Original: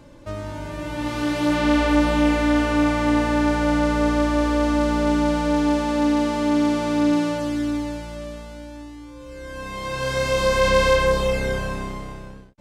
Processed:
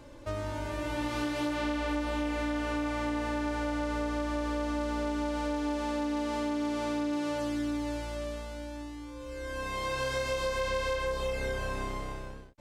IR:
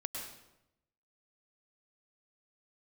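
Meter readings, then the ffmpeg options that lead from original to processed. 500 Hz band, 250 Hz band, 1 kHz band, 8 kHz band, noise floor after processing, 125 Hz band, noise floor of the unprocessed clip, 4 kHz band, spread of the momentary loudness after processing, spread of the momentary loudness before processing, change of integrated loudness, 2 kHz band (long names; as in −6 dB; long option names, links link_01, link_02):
−11.0 dB, −12.5 dB, −10.0 dB, −9.5 dB, −43 dBFS, −11.5 dB, −40 dBFS, −10.0 dB, 8 LU, 17 LU, −12.0 dB, −10.0 dB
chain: -af "equalizer=frequency=170:width=2.3:gain=-11.5,acompressor=threshold=-27dB:ratio=6,volume=-2dB"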